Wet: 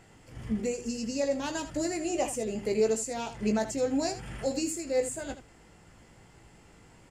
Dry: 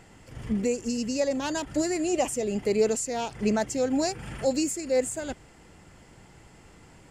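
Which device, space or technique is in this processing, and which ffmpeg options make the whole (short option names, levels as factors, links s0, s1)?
slapback doubling: -filter_complex "[0:a]asplit=3[s0][s1][s2];[s1]adelay=18,volume=0.501[s3];[s2]adelay=81,volume=0.266[s4];[s0][s3][s4]amix=inputs=3:normalize=0,volume=0.596"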